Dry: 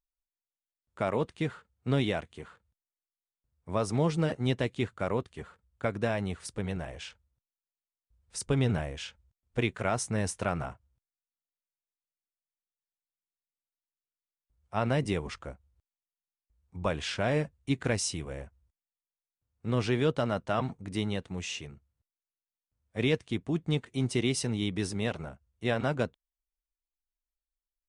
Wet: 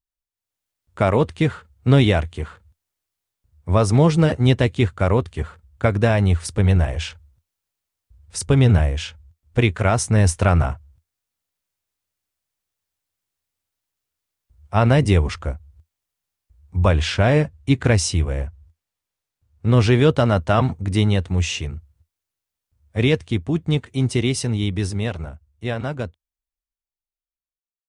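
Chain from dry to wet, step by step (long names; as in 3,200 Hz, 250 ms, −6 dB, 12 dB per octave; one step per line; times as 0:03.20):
fade-out on the ending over 7.39 s
parametric band 81 Hz +14.5 dB 0.76 octaves
automatic gain control gain up to 15 dB
0:16.88–0:19.73: high-shelf EQ 8,400 Hz −5.5 dB
level −2 dB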